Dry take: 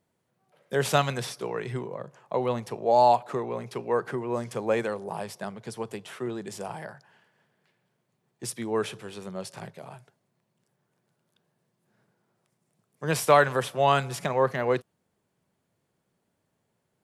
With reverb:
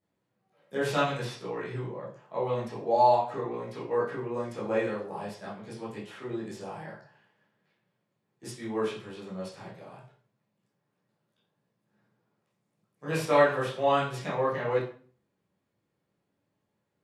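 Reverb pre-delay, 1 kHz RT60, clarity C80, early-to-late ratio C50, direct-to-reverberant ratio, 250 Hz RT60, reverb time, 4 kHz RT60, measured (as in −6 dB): 11 ms, 0.45 s, 10.0 dB, 5.0 dB, −9.5 dB, 0.50 s, 0.45 s, 0.40 s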